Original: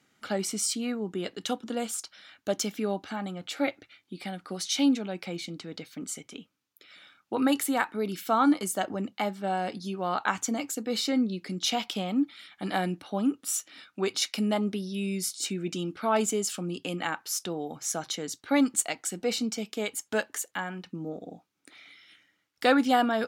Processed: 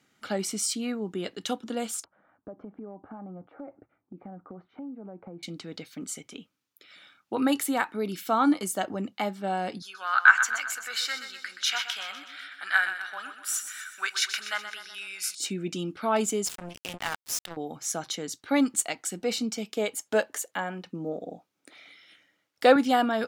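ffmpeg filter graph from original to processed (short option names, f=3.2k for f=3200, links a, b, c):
-filter_complex "[0:a]asettb=1/sr,asplit=3[a][b][c];[a]atrim=end=2.044[d];[b]atrim=start=2.04:end=5.43,asetpts=PTS-STARTPTS,afade=t=in:d=0.004:c=qsin,afade=t=out:st=3.386:d=0.004:c=qsin,lowpass=f=1.1k:w=0.5412,lowpass=f=1.1k:w=1.3066,acompressor=threshold=-38dB:ratio=6:attack=3.2:release=140:knee=1:detection=peak[e];[c]atrim=start=5.426[f];[d][e]acrossfade=d=0.004:c1=hsin:c2=qsin[g];[g][f]acrossfade=d=0.004:c1=qsin:c2=hsin,asettb=1/sr,asplit=3[h][i][j];[h]atrim=end=9.824[k];[i]atrim=start=9.82:end=15.35,asetpts=PTS-STARTPTS,afade=t=in:d=0.004:c=qsin,afade=t=out:st=5.526:d=0.004:c=qsin,highpass=f=1.5k:t=q:w=8.1,aecho=1:1:125|250|375|500|625|750:0.316|0.168|0.0888|0.0471|0.025|0.0132,atrim=end_sample=243873[l];[j]atrim=start=15.346[m];[k][l]acrossfade=d=0.004:c1=hsin:c2=qsin[n];[n][m]acrossfade=d=0.004:c1=qsin:c2=hsin,asettb=1/sr,asplit=3[o][p][q];[o]atrim=end=16.464[r];[p]atrim=start=16.46:end=17.57,asetpts=PTS-STARTPTS,afade=t=in:d=0.004:c=qsin,afade=t=out:st=1.106:d=0.004:c=qsin,equalizer=f=390:w=2.9:g=-15,acrusher=bits=4:mix=0:aa=0.5[s];[q]atrim=start=17.566[t];[r][s]acrossfade=d=0.004:c1=hsin:c2=qsin[u];[u][t]acrossfade=d=0.004:c1=qsin:c2=hsin,asettb=1/sr,asplit=3[v][w][x];[v]atrim=end=19.764[y];[w]atrim=start=19.76:end=22.76,asetpts=PTS-STARTPTS,afade=t=in:d=0.004:c=qsin,afade=t=out:st=2.996:d=0.004:c=qsin,highpass=82,equalizer=f=570:t=o:w=0.93:g=7[z];[x]atrim=start=22.756[aa];[y][z]acrossfade=d=0.004:c1=hsin:c2=qsin[ab];[ab][aa]acrossfade=d=0.004:c1=qsin:c2=hsin"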